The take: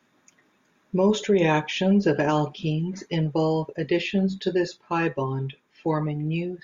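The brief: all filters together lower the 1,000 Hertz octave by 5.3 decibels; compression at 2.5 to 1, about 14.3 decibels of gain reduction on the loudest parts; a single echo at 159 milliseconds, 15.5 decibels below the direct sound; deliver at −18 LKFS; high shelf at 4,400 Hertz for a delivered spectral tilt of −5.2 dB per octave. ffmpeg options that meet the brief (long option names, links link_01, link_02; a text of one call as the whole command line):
ffmpeg -i in.wav -af "equalizer=frequency=1000:width_type=o:gain=-7,highshelf=frequency=4400:gain=7.5,acompressor=threshold=-39dB:ratio=2.5,aecho=1:1:159:0.168,volume=19dB" out.wav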